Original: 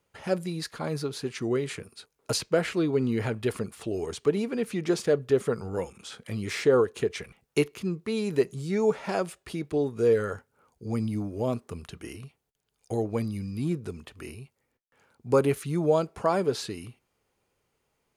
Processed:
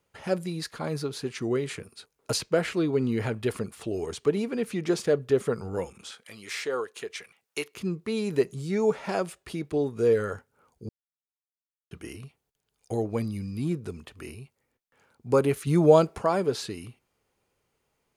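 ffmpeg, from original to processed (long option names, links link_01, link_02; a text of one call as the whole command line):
ffmpeg -i in.wav -filter_complex "[0:a]asettb=1/sr,asplit=3[link_01][link_02][link_03];[link_01]atrim=end=6.114[link_04];[link_02]atrim=start=6.11:end=7.75,asetpts=PTS-STARTPTS,afade=type=in:duration=0.004:curve=qsin,afade=type=out:start_time=1.636:duration=0.004:curve=qsin,highpass=frequency=1300:poles=1[link_05];[link_03]atrim=start=7.746[link_06];[link_04][link_05]acrossfade=duration=0.004:curve1=hsin:curve2=qsin[link_07];[link_07][link_06]acrossfade=duration=0.004:curve1=qsin:curve2=hsin,asplit=5[link_08][link_09][link_10][link_11][link_12];[link_08]atrim=end=10.89,asetpts=PTS-STARTPTS,afade=type=out:start_time=10.886:duration=0.004:curve=hsin[link_13];[link_09]atrim=start=10.89:end=11.91,asetpts=PTS-STARTPTS,volume=0[link_14];[link_10]atrim=start=11.91:end=15.672,asetpts=PTS-STARTPTS,afade=type=in:duration=0.004:curve=hsin[link_15];[link_11]atrim=start=15.668:end=16.182,asetpts=PTS-STARTPTS,volume=6dB[link_16];[link_12]atrim=start=16.178[link_17];[link_13][link_14][link_15]concat=n=3:v=0:a=1[link_18];[link_18][link_16]acrossfade=duration=0.004:curve1=hsin:curve2=hsin[link_19];[link_19][link_17]acrossfade=duration=0.004:curve1=hsin:curve2=hsin" out.wav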